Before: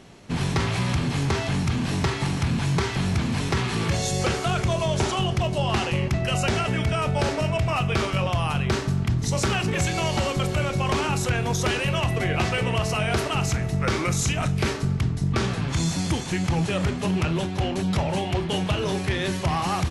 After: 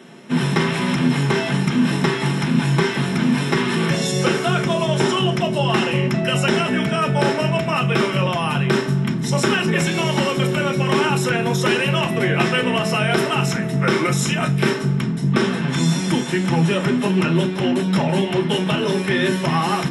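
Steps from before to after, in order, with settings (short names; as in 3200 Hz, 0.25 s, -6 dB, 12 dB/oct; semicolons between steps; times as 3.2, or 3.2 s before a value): high shelf 3100 Hz +12 dB; reverb RT60 0.15 s, pre-delay 3 ms, DRR 0.5 dB; gain -7 dB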